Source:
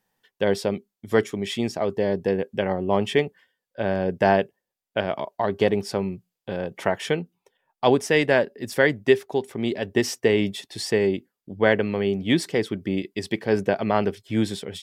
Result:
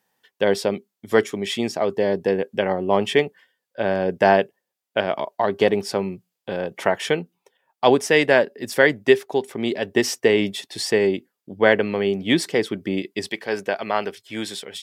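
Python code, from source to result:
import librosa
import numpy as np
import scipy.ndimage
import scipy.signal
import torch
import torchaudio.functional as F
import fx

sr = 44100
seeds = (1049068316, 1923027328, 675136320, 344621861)

y = fx.highpass(x, sr, hz=fx.steps((0.0, 250.0), (13.29, 960.0)), slope=6)
y = F.gain(torch.from_numpy(y), 4.0).numpy()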